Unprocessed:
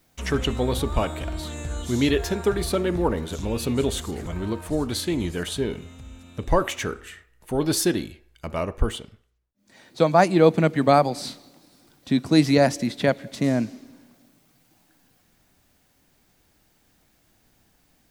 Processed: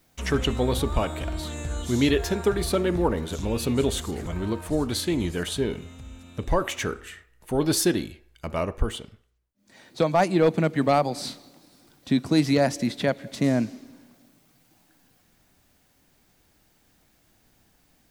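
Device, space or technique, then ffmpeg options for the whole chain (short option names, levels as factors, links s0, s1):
clipper into limiter: -af "asoftclip=type=hard:threshold=0.398,alimiter=limit=0.266:level=0:latency=1:release=216"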